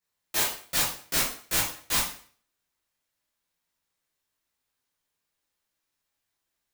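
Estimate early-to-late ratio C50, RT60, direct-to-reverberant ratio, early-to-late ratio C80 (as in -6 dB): 3.5 dB, 0.45 s, -9.0 dB, 8.5 dB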